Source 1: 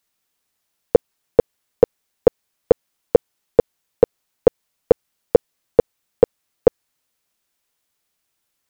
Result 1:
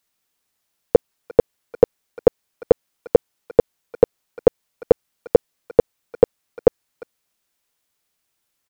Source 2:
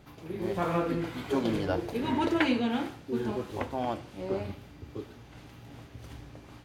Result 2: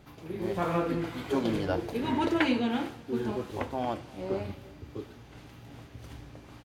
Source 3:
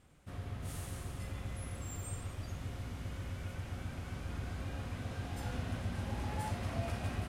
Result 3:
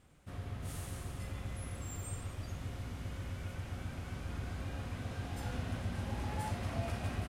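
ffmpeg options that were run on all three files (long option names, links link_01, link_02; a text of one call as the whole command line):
ffmpeg -i in.wav -filter_complex "[0:a]asplit=2[link_01][link_02];[link_02]adelay=350,highpass=300,lowpass=3400,asoftclip=type=hard:threshold=-9dB,volume=-21dB[link_03];[link_01][link_03]amix=inputs=2:normalize=0" out.wav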